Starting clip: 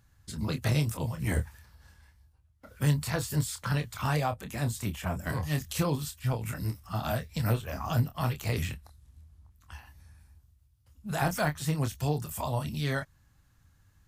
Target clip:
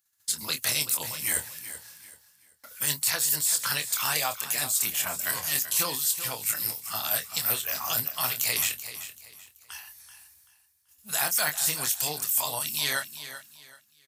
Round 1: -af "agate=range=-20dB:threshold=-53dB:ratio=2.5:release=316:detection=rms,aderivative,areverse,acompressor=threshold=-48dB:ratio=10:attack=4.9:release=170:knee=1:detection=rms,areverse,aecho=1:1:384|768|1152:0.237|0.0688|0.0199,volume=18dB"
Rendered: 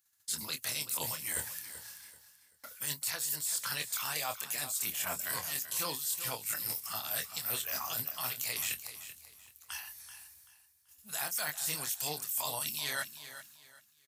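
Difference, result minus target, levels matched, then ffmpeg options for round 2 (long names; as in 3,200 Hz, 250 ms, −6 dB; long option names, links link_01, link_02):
downward compressor: peak gain reduction +9.5 dB
-af "agate=range=-20dB:threshold=-53dB:ratio=2.5:release=316:detection=rms,aderivative,areverse,acompressor=threshold=-37.5dB:ratio=10:attack=4.9:release=170:knee=1:detection=rms,areverse,aecho=1:1:384|768|1152:0.237|0.0688|0.0199,volume=18dB"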